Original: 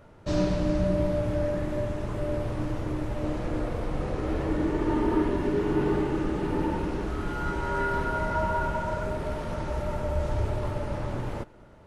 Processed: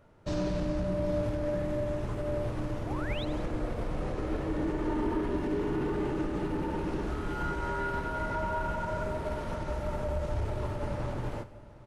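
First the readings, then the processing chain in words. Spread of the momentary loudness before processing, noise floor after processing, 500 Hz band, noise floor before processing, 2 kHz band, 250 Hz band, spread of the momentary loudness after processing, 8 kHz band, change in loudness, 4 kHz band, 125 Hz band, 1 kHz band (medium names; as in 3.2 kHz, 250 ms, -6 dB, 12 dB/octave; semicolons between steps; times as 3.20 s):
6 LU, -48 dBFS, -4.0 dB, -51 dBFS, -3.5 dB, -4.5 dB, 4 LU, no reading, -4.0 dB, -2.5 dB, -4.0 dB, -4.0 dB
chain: on a send: delay 761 ms -14.5 dB; on the sum: saturation -17.5 dBFS, distortion -22 dB; peak limiter -23.5 dBFS, peak gain reduction 5 dB; painted sound rise, 2.86–3.25 s, 630–4200 Hz -40 dBFS; two-band feedback delay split 860 Hz, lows 177 ms, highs 86 ms, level -14 dB; upward expansion 1.5:1, over -42 dBFS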